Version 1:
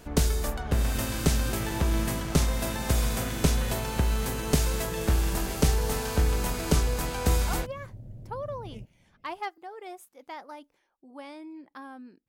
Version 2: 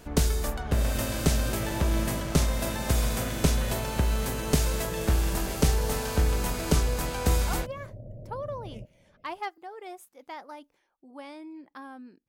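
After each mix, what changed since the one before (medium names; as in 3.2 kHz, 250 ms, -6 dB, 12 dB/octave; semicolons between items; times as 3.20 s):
second sound: add resonant low-pass 600 Hz, resonance Q 5.4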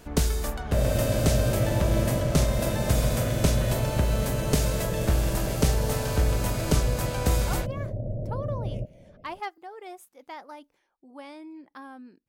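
second sound +11.0 dB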